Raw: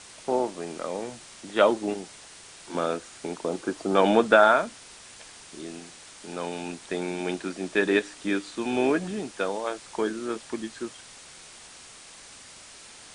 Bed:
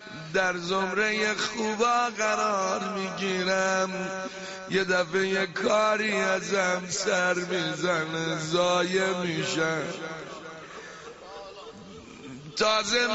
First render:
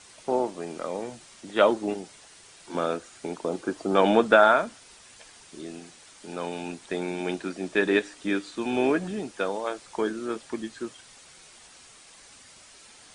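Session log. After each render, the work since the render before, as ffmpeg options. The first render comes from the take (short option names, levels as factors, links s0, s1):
-af "afftdn=nr=6:nf=-48"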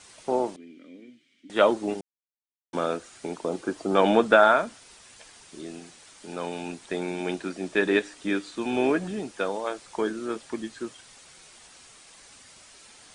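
-filter_complex "[0:a]asettb=1/sr,asplit=3[s0][s1][s2];[s0]atrim=end=0.564[s3];[s1]atrim=start=0.56:end=1.5,asetpts=PTS-STARTPTS,afade=t=in:d=0.004:c=qsin,afade=t=out:st=0.936:d=0.004:c=qsin,asplit=3[s4][s5][s6];[s4]bandpass=f=270:t=q:w=8,volume=1[s7];[s5]bandpass=f=2290:t=q:w=8,volume=0.501[s8];[s6]bandpass=f=3010:t=q:w=8,volume=0.355[s9];[s7][s8][s9]amix=inputs=3:normalize=0[s10];[s2]atrim=start=1.496[s11];[s3][s10]acrossfade=d=0.004:c1=hsin:c2=qsin[s12];[s12][s11]acrossfade=d=0.004:c1=qsin:c2=hsin,asplit=3[s13][s14][s15];[s13]atrim=end=2.01,asetpts=PTS-STARTPTS,afade=t=out:st=2.006:d=0.004:c=hsin[s16];[s14]atrim=start=2.01:end=2.73,asetpts=PTS-STARTPTS,volume=0[s17];[s15]atrim=start=2.73,asetpts=PTS-STARTPTS,afade=t=in:d=0.004:c=hsin[s18];[s16][s17][s18]concat=n=3:v=0:a=1"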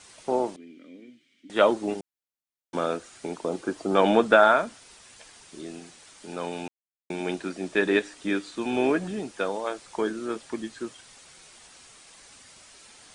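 -filter_complex "[0:a]asplit=3[s0][s1][s2];[s0]atrim=end=6.68,asetpts=PTS-STARTPTS,afade=t=out:st=6.676:d=0.004:c=hsin[s3];[s1]atrim=start=6.68:end=7.1,asetpts=PTS-STARTPTS,volume=0[s4];[s2]atrim=start=7.1,asetpts=PTS-STARTPTS,afade=t=in:d=0.004:c=hsin[s5];[s3][s4][s5]concat=n=3:v=0:a=1"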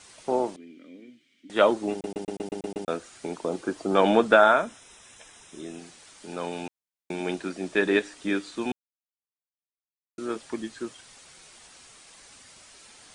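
-filter_complex "[0:a]asettb=1/sr,asplit=3[s0][s1][s2];[s0]atrim=end=4.394[s3];[s1]atrim=start=4.39:end=5.79,asetpts=PTS-STARTPTS,afade=t=in:d=0.004:c=qsin,afade=t=out:st=1.396:d=0.004:c=qsin,asuperstop=centerf=4500:order=8:qfactor=5.1[s4];[s2]atrim=start=5.786[s5];[s3][s4]acrossfade=d=0.004:c1=hsin:c2=qsin[s6];[s6][s5]acrossfade=d=0.004:c1=qsin:c2=hsin,asplit=11[s7][s8][s9][s10][s11][s12][s13][s14][s15][s16][s17];[s7]atrim=end=2.042[s18];[s8]atrim=start=1.918:end=2.042[s19];[s9]atrim=start=1.918:end=2.042[s20];[s10]atrim=start=1.918:end=2.042[s21];[s11]atrim=start=1.918:end=2.042[s22];[s12]atrim=start=1.918:end=2.042[s23];[s13]atrim=start=1.918:end=2.042[s24];[s14]atrim=start=1.918:end=2.042[s25];[s15]atrim=start=2.878:end=8.72,asetpts=PTS-STARTPTS,afade=t=out:st=5.838:d=0.004:c=hsin[s26];[s16]atrim=start=8.72:end=10.18,asetpts=PTS-STARTPTS,volume=0[s27];[s17]atrim=start=10.18,asetpts=PTS-STARTPTS,afade=t=in:d=0.004:c=hsin[s28];[s18][s19]acrossfade=d=0.004:c1=hsin:c2=hsin[s29];[s29][s20]acrossfade=d=0.004:c1=hsin:c2=hsin[s30];[s30][s21]acrossfade=d=0.004:c1=hsin:c2=hsin[s31];[s31][s22]acrossfade=d=0.004:c1=hsin:c2=hsin[s32];[s32][s23]acrossfade=d=0.004:c1=hsin:c2=hsin[s33];[s33][s24]acrossfade=d=0.004:c1=hsin:c2=hsin[s34];[s34][s25]acrossfade=d=0.004:c1=hsin:c2=hsin[s35];[s26][s27][s28]concat=n=3:v=0:a=1[s36];[s35][s36]acrossfade=d=0.004:c1=hsin:c2=hsin"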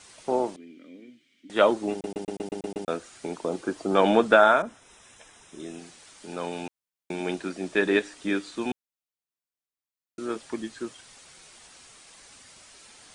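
-filter_complex "[0:a]asettb=1/sr,asplit=3[s0][s1][s2];[s0]atrim=end=4.624[s3];[s1]atrim=start=4.62:end=5.6,asetpts=PTS-STARTPTS,afade=t=in:d=0.004:c=qsin,afade=t=out:st=0.976:d=0.004:c=qsin,adynamicequalizer=threshold=0.00158:dfrequency=2100:dqfactor=0.7:tfrequency=2100:tqfactor=0.7:attack=5:release=100:ratio=0.375:range=3.5:mode=cutabove:tftype=highshelf[s4];[s2]atrim=start=5.596[s5];[s3][s4]acrossfade=d=0.004:c1=hsin:c2=qsin[s6];[s6][s5]acrossfade=d=0.004:c1=qsin:c2=hsin"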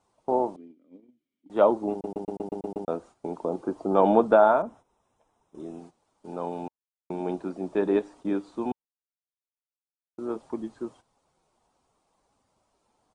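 -af "agate=range=0.224:threshold=0.00562:ratio=16:detection=peak,firequalizer=gain_entry='entry(510,0);entry(900,3);entry(1700,-16)':delay=0.05:min_phase=1"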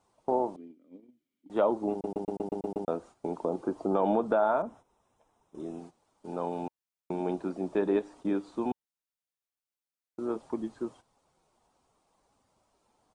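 -af "alimiter=limit=0.282:level=0:latency=1:release=102,acompressor=threshold=0.0398:ratio=1.5"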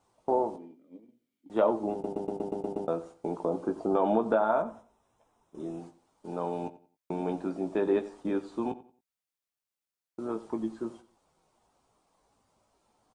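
-filter_complex "[0:a]asplit=2[s0][s1];[s1]adelay=18,volume=0.398[s2];[s0][s2]amix=inputs=2:normalize=0,asplit=2[s3][s4];[s4]adelay=90,lowpass=f=4000:p=1,volume=0.15,asplit=2[s5][s6];[s6]adelay=90,lowpass=f=4000:p=1,volume=0.28,asplit=2[s7][s8];[s8]adelay=90,lowpass=f=4000:p=1,volume=0.28[s9];[s3][s5][s7][s9]amix=inputs=4:normalize=0"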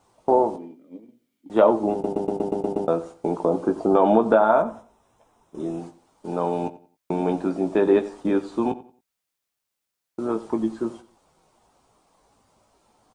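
-af "volume=2.66"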